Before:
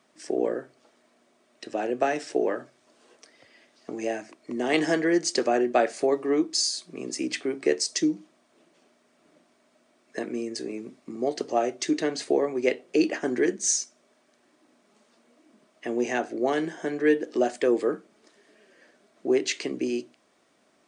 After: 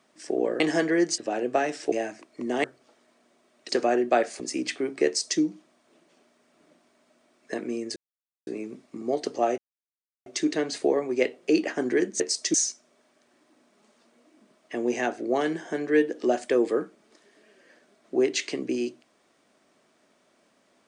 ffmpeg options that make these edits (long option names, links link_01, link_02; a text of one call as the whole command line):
ffmpeg -i in.wav -filter_complex "[0:a]asplit=11[link_01][link_02][link_03][link_04][link_05][link_06][link_07][link_08][link_09][link_10][link_11];[link_01]atrim=end=0.602[link_12];[link_02]atrim=start=4.738:end=5.322[link_13];[link_03]atrim=start=1.648:end=2.392[link_14];[link_04]atrim=start=4.018:end=4.742[link_15];[link_05]atrim=start=0.598:end=1.652[link_16];[link_06]atrim=start=5.318:end=6.032[link_17];[link_07]atrim=start=7.048:end=10.61,asetpts=PTS-STARTPTS,afade=type=out:start_time=3.558:duration=0.004:curve=hsin,apad=pad_dur=0.51[link_18];[link_08]atrim=start=10.61:end=11.72,asetpts=PTS-STARTPTS,afade=type=in:duration=0.004:curve=hsin,afade=type=out:start_time=1.106:duration=0.004:curve=hsin,apad=pad_dur=0.68[link_19];[link_09]atrim=start=11.72:end=13.662,asetpts=PTS-STARTPTS,afade=type=in:duration=0.004:curve=hsin[link_20];[link_10]atrim=start=7.708:end=8.052[link_21];[link_11]atrim=start=13.658[link_22];[link_12][link_13]acrossfade=duration=0.004:curve1=hsin:curve2=hsin[link_23];[link_23][link_14]acrossfade=duration=0.004:curve1=hsin:curve2=hsin[link_24];[link_24][link_15]acrossfade=duration=0.004:curve1=hsin:curve2=hsin[link_25];[link_25][link_16]acrossfade=duration=0.004:curve1=hsin:curve2=hsin[link_26];[link_26][link_17]acrossfade=duration=0.004:curve1=hsin:curve2=hsin[link_27];[link_18][link_19][link_20]concat=n=3:v=0:a=1[link_28];[link_27][link_28]acrossfade=duration=0.004:curve1=hsin:curve2=hsin[link_29];[link_29][link_21]acrossfade=duration=0.004:curve1=hsin:curve2=hsin[link_30];[link_30][link_22]acrossfade=duration=0.004:curve1=hsin:curve2=hsin" out.wav